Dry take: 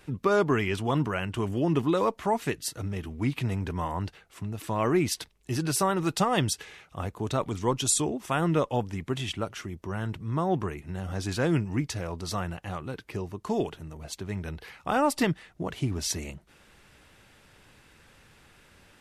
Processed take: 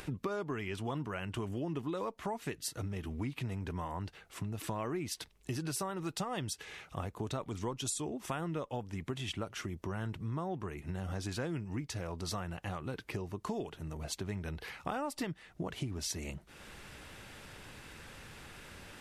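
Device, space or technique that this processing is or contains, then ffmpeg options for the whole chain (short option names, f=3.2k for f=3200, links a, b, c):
upward and downward compression: -af "acompressor=mode=upward:threshold=-44dB:ratio=2.5,acompressor=threshold=-36dB:ratio=6,volume=1dB"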